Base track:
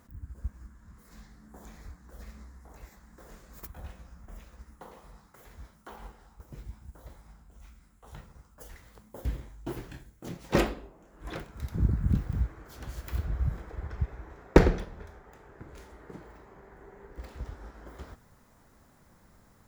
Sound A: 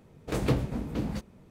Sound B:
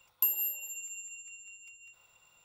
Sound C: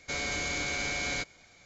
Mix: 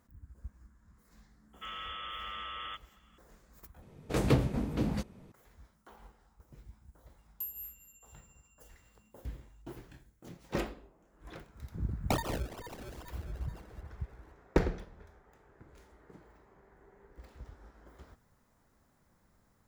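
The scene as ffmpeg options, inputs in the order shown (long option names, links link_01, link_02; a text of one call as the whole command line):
ffmpeg -i bed.wav -i cue0.wav -i cue1.wav -i cue2.wav -filter_complex "[2:a]asplit=2[link_01][link_02];[0:a]volume=-9.5dB[link_03];[3:a]lowpass=frequency=3000:width_type=q:width=0.5098,lowpass=frequency=3000:width_type=q:width=0.6013,lowpass=frequency=3000:width_type=q:width=0.9,lowpass=frequency=3000:width_type=q:width=2.563,afreqshift=-3500[link_04];[link_01]aecho=1:1:4.2:0.94[link_05];[link_02]acrusher=samples=31:mix=1:aa=0.000001:lfo=1:lforange=31:lforate=2.3[link_06];[link_03]asplit=2[link_07][link_08];[link_07]atrim=end=3.824[link_09];[1:a]atrim=end=1.5[link_10];[link_08]atrim=start=5.316[link_11];[link_04]atrim=end=1.65,asetpts=PTS-STARTPTS,volume=-8dB,afade=type=in:duration=0.004:curve=hsin,afade=type=out:start_time=1.646:duration=0.004:curve=hsin,adelay=1530[link_12];[link_05]atrim=end=2.44,asetpts=PTS-STARTPTS,volume=-17dB,afade=type=in:duration=0.004:curve=hsin,afade=type=out:start_time=2.436:duration=0.004:curve=hsin,adelay=7180[link_13];[link_06]atrim=end=2.44,asetpts=PTS-STARTPTS,volume=-4dB,afade=type=in:duration=0.004:curve=hsin,afade=type=out:start_time=2.436:duration=0.004:curve=hsin,adelay=11880[link_14];[link_09][link_10]acrossfade=duration=0.004:curve1=hsin:curve2=hsin[link_15];[link_15][link_11]acrossfade=duration=0.004:curve1=hsin:curve2=hsin[link_16];[link_16][link_12][link_13][link_14]amix=inputs=4:normalize=0" out.wav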